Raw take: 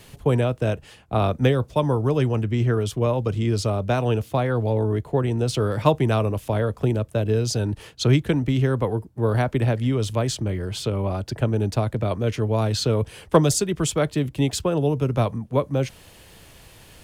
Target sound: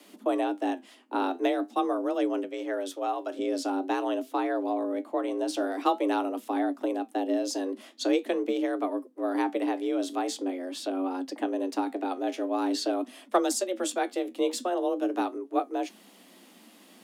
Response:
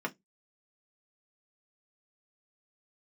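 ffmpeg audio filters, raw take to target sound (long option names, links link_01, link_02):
-filter_complex "[0:a]asettb=1/sr,asplit=3[link_01][link_02][link_03];[link_01]atrim=end=2.434[link_04];[link_02]atrim=start=2.43:end=3.39,asetpts=PTS-STARTPTS,afade=type=in:duration=0.004:curve=qsin,afade=type=out:start_time=0.956:duration=0.004:curve=qsin,highpass=frequency=270:poles=1[link_05];[link_03]atrim=start=3.386[link_06];[link_04][link_05]acrossfade=duration=0.004:curve1=hsin:curve2=qsin[link_07];[link_07][link_06]acrossfade=duration=0.004:curve1=qsin:curve2=hsin,afreqshift=180,flanger=delay=6.6:depth=6.5:regen=69:speed=0.45:shape=triangular,volume=-2.5dB"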